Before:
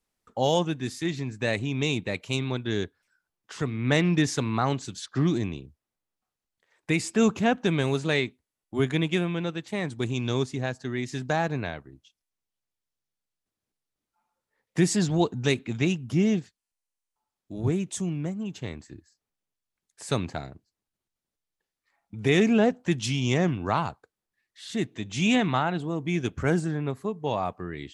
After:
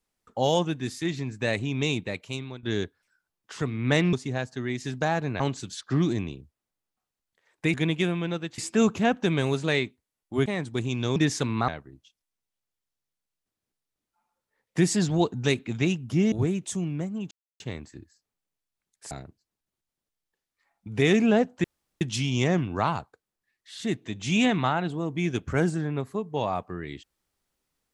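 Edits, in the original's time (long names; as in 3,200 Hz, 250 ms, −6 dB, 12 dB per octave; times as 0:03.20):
0:01.91–0:02.63: fade out, to −13.5 dB
0:04.13–0:04.65: swap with 0:10.41–0:11.68
0:08.87–0:09.71: move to 0:06.99
0:16.32–0:17.57: remove
0:18.56: splice in silence 0.29 s
0:20.07–0:20.38: remove
0:22.91: splice in room tone 0.37 s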